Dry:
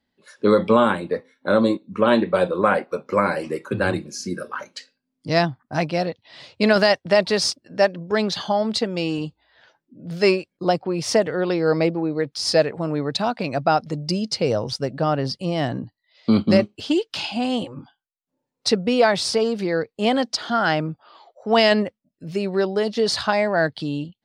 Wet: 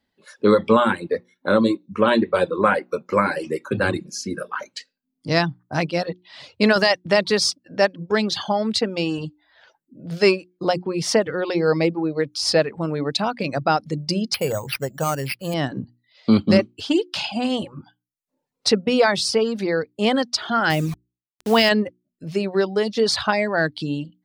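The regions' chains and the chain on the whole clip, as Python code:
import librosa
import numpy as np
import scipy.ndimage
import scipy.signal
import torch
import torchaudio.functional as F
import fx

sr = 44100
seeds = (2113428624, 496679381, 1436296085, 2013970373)

y = fx.chain(x, sr, fx.peak_eq(hz=270.0, db=-7.5, octaves=1.3),
    fx.resample_bad(factor=6, down='none', up='hold'), at=(14.34, 15.54))
y = fx.chain(y, sr, fx.peak_eq(hz=92.0, db=8.0, octaves=1.4),
    fx.quant_dither(seeds[0], bits=6, dither='none'),
    fx.sustainer(db_per_s=82.0), at=(20.7, 21.69))
y = fx.hum_notches(y, sr, base_hz=60, count=6)
y = fx.dereverb_blind(y, sr, rt60_s=0.53)
y = fx.dynamic_eq(y, sr, hz=680.0, q=3.0, threshold_db=-32.0, ratio=4.0, max_db=-5)
y = y * 10.0 ** (2.0 / 20.0)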